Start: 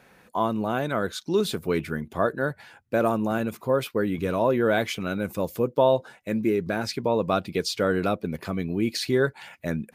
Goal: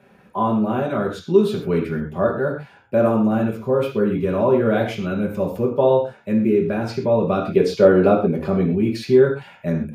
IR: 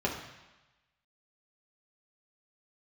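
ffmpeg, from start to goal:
-filter_complex "[0:a]asettb=1/sr,asplit=3[a][b][c];[a]atrim=end=7.394[d];[b]atrim=start=7.39:end=8.71,asetpts=PTS-STARTPTS,afade=t=in:d=0.004:c=qsin,afade=t=out:st=1.316:d=0.004:c=qsin,equalizer=f=520:w=0.52:g=7[e];[c]atrim=start=8.706[f];[d][e]acrossfade=d=0.004:c1=hsin:c2=qsin[g];[g][f]acrossfade=d=0.004:c1=qsin:c2=hsin[h];[1:a]atrim=start_sample=2205,atrim=end_sample=6174[i];[h][i]afir=irnorm=-1:irlink=0,volume=-6.5dB"

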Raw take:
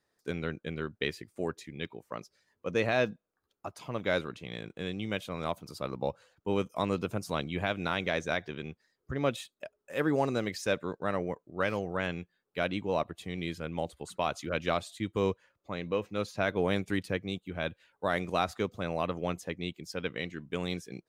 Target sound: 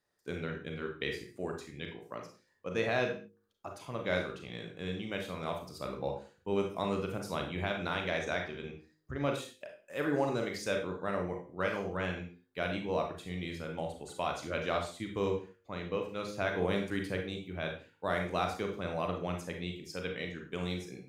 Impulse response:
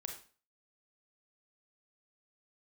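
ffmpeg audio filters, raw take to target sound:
-filter_complex "[0:a]bandreject=f=51.85:t=h:w=4,bandreject=f=103.7:t=h:w=4,bandreject=f=155.55:t=h:w=4,bandreject=f=207.4:t=h:w=4,bandreject=f=259.25:t=h:w=4,bandreject=f=311.1:t=h:w=4,bandreject=f=362.95:t=h:w=4,bandreject=f=414.8:t=h:w=4,bandreject=f=466.65:t=h:w=4,bandreject=f=518.5:t=h:w=4[a];[1:a]atrim=start_sample=2205,afade=t=out:st=0.29:d=0.01,atrim=end_sample=13230[b];[a][b]afir=irnorm=-1:irlink=0"

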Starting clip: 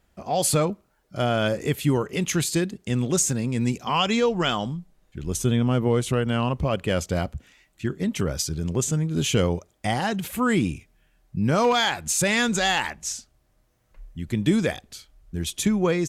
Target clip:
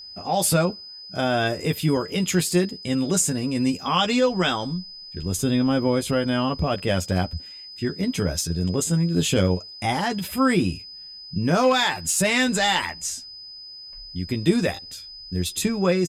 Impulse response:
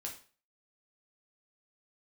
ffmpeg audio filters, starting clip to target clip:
-filter_complex "[0:a]asplit=2[a][b];[b]adelay=12,volume=-5dB[c];[a][c]amix=inputs=2:normalize=0,asetrate=46722,aresample=44100,atempo=0.943874,aeval=exprs='val(0)+0.0126*sin(2*PI*5000*n/s)':c=same"

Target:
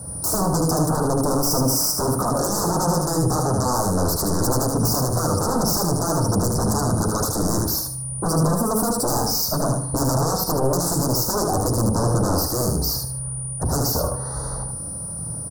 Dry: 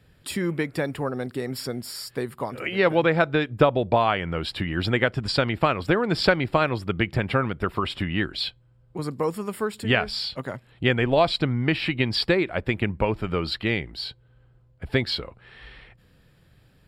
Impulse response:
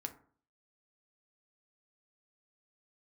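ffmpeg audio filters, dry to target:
-filter_complex "[0:a]highpass=48,equalizer=f=320:t=o:w=0.68:g=-7.5,bandreject=f=50:t=h:w=6,bandreject=f=100:t=h:w=6,bandreject=f=150:t=h:w=6,bandreject=f=200:t=h:w=6,bandreject=f=250:t=h:w=6,bandreject=f=300:t=h:w=6,bandreject=f=350:t=h:w=6,bandreject=f=400:t=h:w=6,bandreject=f=450:t=h:w=6,acompressor=threshold=-32dB:ratio=3,aeval=exprs='val(0)+0.00126*sin(2*PI*8700*n/s)':c=same,aeval=exprs='0.112*sin(PI/2*7.08*val(0)/0.112)':c=same,aecho=1:1:83|166|249|332:0.631|0.177|0.0495|0.0139,asplit=2[a][b];[1:a]atrim=start_sample=2205[c];[b][c]afir=irnorm=-1:irlink=0,volume=-1dB[d];[a][d]amix=inputs=2:normalize=0,asetrate=48000,aresample=44100,asuperstop=centerf=2600:order=8:qfactor=0.64,volume=-2.5dB"

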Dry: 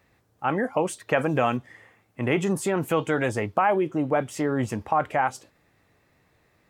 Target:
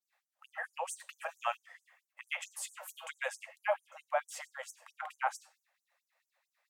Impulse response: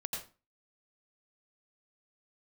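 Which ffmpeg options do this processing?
-filter_complex "[0:a]agate=range=-33dB:threshold=-59dB:ratio=3:detection=peak,asplit=2[a][b];[1:a]atrim=start_sample=2205[c];[b][c]afir=irnorm=-1:irlink=0,volume=-14.5dB[d];[a][d]amix=inputs=2:normalize=0,afftfilt=real='re*gte(b*sr/1024,480*pow(5900/480,0.5+0.5*sin(2*PI*4.5*pts/sr)))':imag='im*gte(b*sr/1024,480*pow(5900/480,0.5+0.5*sin(2*PI*4.5*pts/sr)))':win_size=1024:overlap=0.75,volume=-7dB"

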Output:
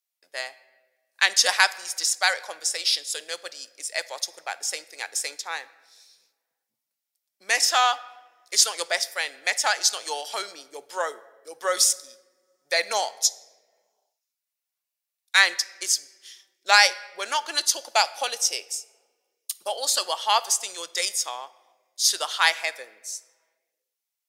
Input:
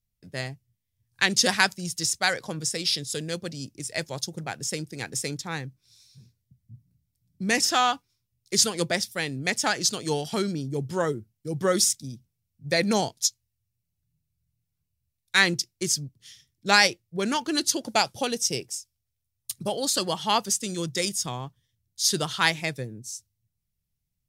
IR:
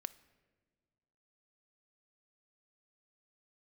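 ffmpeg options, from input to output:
-filter_complex "[0:a]highpass=f=610:w=0.5412,highpass=f=610:w=1.3066[a];[1:a]atrim=start_sample=2205[b];[a][b]afir=irnorm=-1:irlink=0,volume=6dB"

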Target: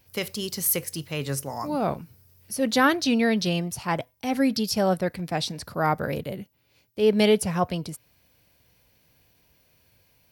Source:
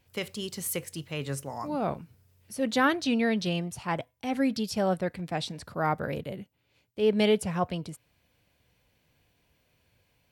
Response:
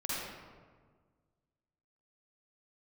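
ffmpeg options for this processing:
-af "aexciter=amount=1.1:drive=8.3:freq=4.5k,volume=4dB"

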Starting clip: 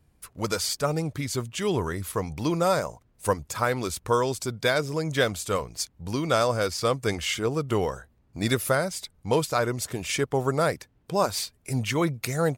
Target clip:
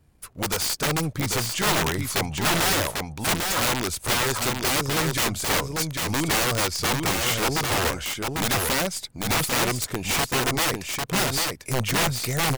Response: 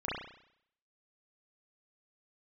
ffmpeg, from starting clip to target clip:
-filter_complex "[0:a]aeval=exprs='if(lt(val(0),0),0.708*val(0),val(0))':c=same,asettb=1/sr,asplit=3[a][b][c];[a]atrim=end=1.484[d];[b]atrim=start=1.48:end=3.82,asetpts=PTS-STARTPTS,afade=t=in:d=0.004:c=qsin,afade=t=out:st=2.336:d=0.004:c=qsin,equalizer=f=890:w=0.81:g=5.5[e];[c]atrim=start=3.816[f];[d][e]acrossfade=d=0.004:c1=hsin:c2=qsin[g];[g][f]acrossfade=d=0.004:c1=qsin:c2=hsin,aeval=exprs='(mod(12.6*val(0)+1,2)-1)/12.6':c=same,aecho=1:1:796:0.631,volume=4.5dB"

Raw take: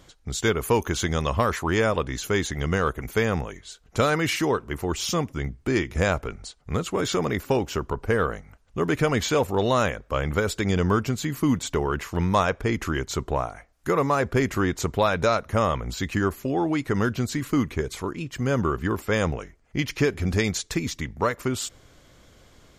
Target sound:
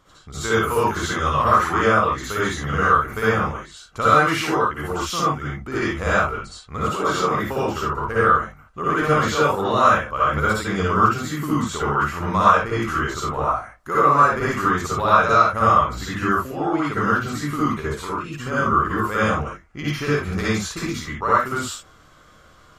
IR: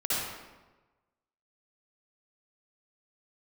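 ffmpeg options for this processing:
-filter_complex "[0:a]equalizer=f=1.2k:w=2.1:g=12.5[a];[1:a]atrim=start_sample=2205,atrim=end_sample=6615[b];[a][b]afir=irnorm=-1:irlink=0,volume=-7dB"

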